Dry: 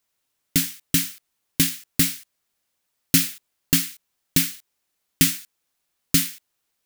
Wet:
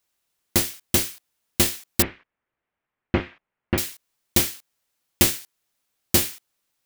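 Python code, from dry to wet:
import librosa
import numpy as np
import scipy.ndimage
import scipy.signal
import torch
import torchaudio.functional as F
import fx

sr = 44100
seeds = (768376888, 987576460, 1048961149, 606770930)

y = fx.cycle_switch(x, sr, every=2, mode='inverted')
y = fx.lowpass(y, sr, hz=2300.0, slope=24, at=(2.02, 3.78))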